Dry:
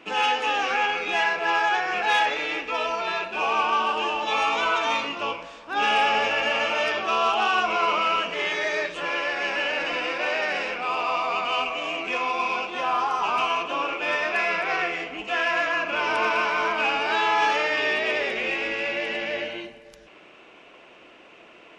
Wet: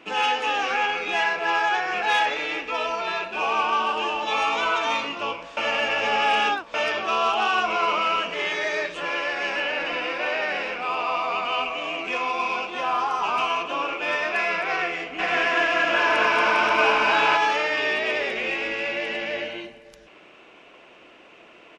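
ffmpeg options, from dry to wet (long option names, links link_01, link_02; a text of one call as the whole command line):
ffmpeg -i in.wav -filter_complex "[0:a]asettb=1/sr,asplit=3[link_01][link_02][link_03];[link_01]atrim=end=9.604[link_04];[link_02]atrim=start=9.6:end=11.99,asetpts=PTS-STARTPTS,afade=type=in:duration=0.004:curve=qsin,afade=type=out:start_time=2.386:duration=0.004:curve=qsin,acrossover=split=4600[link_05][link_06];[link_06]acompressor=threshold=-50dB:ratio=4:attack=1:release=60[link_07];[link_05][link_07]amix=inputs=2:normalize=0[link_08];[link_03]atrim=start=11.986[link_09];[link_04][link_08]acrossfade=duration=0.004:curve1=hsin:curve2=qsin[link_10];[link_10][link_09]acrossfade=duration=0.004:curve1=qsin:curve2=hsin,asplit=3[link_11][link_12][link_13];[link_11]afade=type=out:start_time=15.18:duration=0.02[link_14];[link_12]aecho=1:1:230|402.5|531.9|628.9|701.7|756.3:0.794|0.631|0.501|0.398|0.316|0.251,afade=type=in:start_time=15.18:duration=0.02,afade=type=out:start_time=17.36:duration=0.02[link_15];[link_13]afade=type=in:start_time=17.36:duration=0.02[link_16];[link_14][link_15][link_16]amix=inputs=3:normalize=0,asplit=3[link_17][link_18][link_19];[link_17]atrim=end=5.572[link_20];[link_18]atrim=start=5.568:end=6.742,asetpts=PTS-STARTPTS,areverse[link_21];[link_19]atrim=start=6.738[link_22];[link_20][link_21]acrossfade=duration=0.004:curve1=hsin:curve2=hsin[link_23];[link_23][link_22]acrossfade=duration=0.004:curve1=hsin:curve2=hsin" out.wav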